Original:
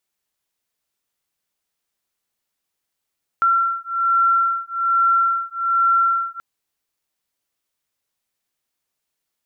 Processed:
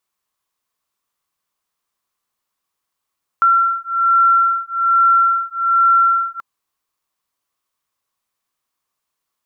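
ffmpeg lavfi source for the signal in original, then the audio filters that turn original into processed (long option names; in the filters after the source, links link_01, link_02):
-f lavfi -i "aevalsrc='0.119*(sin(2*PI*1360*t)+sin(2*PI*1361.2*t))':duration=2.98:sample_rate=44100"
-af "equalizer=frequency=1100:width_type=o:width=0.41:gain=12"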